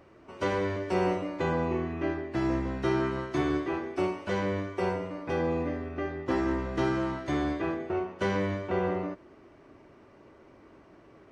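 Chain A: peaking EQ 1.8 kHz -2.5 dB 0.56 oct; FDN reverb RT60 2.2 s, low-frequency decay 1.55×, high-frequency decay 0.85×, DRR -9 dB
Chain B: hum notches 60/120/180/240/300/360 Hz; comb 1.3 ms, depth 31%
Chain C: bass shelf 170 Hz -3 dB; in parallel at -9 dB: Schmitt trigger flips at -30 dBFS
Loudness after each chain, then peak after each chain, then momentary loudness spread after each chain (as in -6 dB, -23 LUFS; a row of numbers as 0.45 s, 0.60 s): -20.5 LUFS, -31.5 LUFS, -30.0 LUFS; -6.0 dBFS, -16.0 dBFS, -15.5 dBFS; 11 LU, 5 LU, 5 LU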